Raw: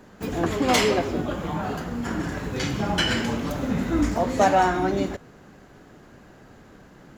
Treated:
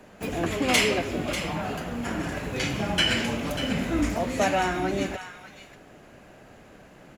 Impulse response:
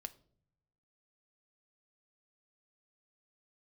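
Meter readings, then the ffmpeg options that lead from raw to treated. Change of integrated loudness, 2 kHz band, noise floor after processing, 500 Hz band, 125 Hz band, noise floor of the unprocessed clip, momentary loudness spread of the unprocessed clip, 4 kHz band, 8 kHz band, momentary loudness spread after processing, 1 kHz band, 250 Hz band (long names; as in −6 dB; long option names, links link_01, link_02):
−2.0 dB, +1.0 dB, −51 dBFS, −3.5 dB, −3.0 dB, −50 dBFS, 10 LU, +1.5 dB, +0.5 dB, 10 LU, −5.5 dB, −3.0 dB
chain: -filter_complex "[0:a]equalizer=frequency=630:width_type=o:width=0.67:gain=7,equalizer=frequency=2500:width_type=o:width=0.67:gain=8,equalizer=frequency=10000:width_type=o:width=0.67:gain=8,acrossover=split=440|1100[link_01][link_02][link_03];[link_02]acompressor=threshold=-33dB:ratio=6[link_04];[link_03]aecho=1:1:592:0.299[link_05];[link_01][link_04][link_05]amix=inputs=3:normalize=0,volume=-3dB"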